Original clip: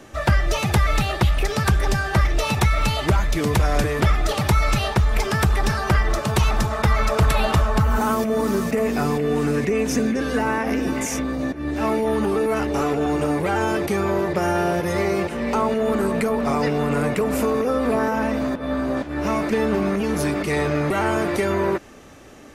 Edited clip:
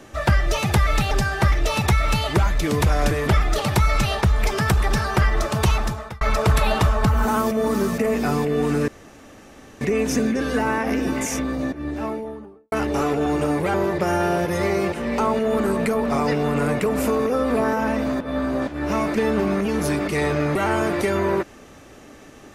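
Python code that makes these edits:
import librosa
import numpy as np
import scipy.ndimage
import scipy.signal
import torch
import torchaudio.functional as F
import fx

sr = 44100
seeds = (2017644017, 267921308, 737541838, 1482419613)

y = fx.studio_fade_out(x, sr, start_s=11.32, length_s=1.2)
y = fx.edit(y, sr, fx.cut(start_s=1.11, length_s=0.73),
    fx.fade_out_span(start_s=6.43, length_s=0.51),
    fx.insert_room_tone(at_s=9.61, length_s=0.93),
    fx.cut(start_s=13.54, length_s=0.55), tone=tone)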